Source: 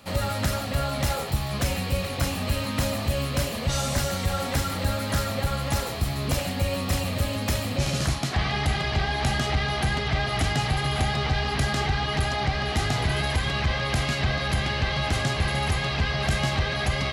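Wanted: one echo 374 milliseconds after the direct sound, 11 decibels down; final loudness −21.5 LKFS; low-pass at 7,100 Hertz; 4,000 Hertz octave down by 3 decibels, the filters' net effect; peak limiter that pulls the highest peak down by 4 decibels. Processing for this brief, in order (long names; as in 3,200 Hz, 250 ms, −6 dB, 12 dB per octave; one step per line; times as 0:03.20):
low-pass filter 7,100 Hz
parametric band 4,000 Hz −3.5 dB
brickwall limiter −18.5 dBFS
single-tap delay 374 ms −11 dB
level +6 dB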